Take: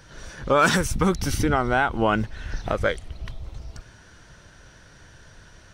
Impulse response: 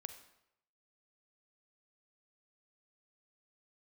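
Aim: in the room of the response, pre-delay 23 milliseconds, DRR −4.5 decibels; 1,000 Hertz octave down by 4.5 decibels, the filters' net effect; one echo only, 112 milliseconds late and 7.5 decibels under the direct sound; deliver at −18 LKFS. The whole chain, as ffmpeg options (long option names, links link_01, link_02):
-filter_complex "[0:a]equalizer=frequency=1000:width_type=o:gain=-6.5,aecho=1:1:112:0.422,asplit=2[link_01][link_02];[1:a]atrim=start_sample=2205,adelay=23[link_03];[link_02][link_03]afir=irnorm=-1:irlink=0,volume=8.5dB[link_04];[link_01][link_04]amix=inputs=2:normalize=0,volume=0.5dB"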